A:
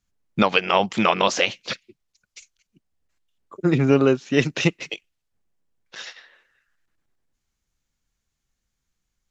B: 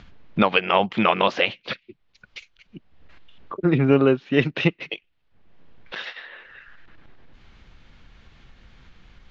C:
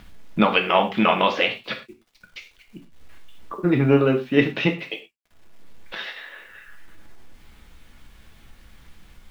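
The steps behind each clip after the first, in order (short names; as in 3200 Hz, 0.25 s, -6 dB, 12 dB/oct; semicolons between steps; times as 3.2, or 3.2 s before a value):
upward compressor, threshold -24 dBFS; LPF 3600 Hz 24 dB/oct
bit-crush 10-bit; non-linear reverb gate 0.14 s falling, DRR 3.5 dB; gain -1 dB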